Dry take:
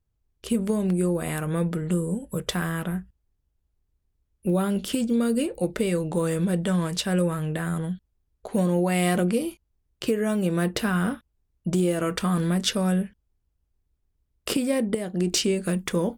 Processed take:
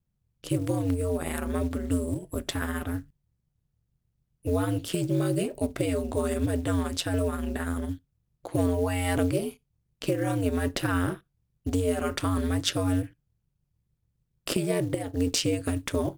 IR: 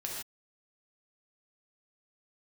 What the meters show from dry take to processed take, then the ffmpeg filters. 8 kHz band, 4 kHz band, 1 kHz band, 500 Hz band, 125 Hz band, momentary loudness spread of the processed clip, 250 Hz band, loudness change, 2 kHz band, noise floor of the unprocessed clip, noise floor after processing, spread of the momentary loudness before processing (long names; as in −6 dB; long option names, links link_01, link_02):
−3.0 dB, −2.5 dB, −2.5 dB, −2.5 dB, −2.0 dB, 7 LU, −4.0 dB, −3.0 dB, −3.0 dB, −75 dBFS, −77 dBFS, 7 LU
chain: -filter_complex "[0:a]aeval=exprs='val(0)*sin(2*PI*90*n/s)':channel_layout=same,acrusher=bits=7:mode=log:mix=0:aa=0.000001,asplit=2[link_01][link_02];[1:a]atrim=start_sample=2205,asetrate=79380,aresample=44100[link_03];[link_02][link_03]afir=irnorm=-1:irlink=0,volume=-23dB[link_04];[link_01][link_04]amix=inputs=2:normalize=0"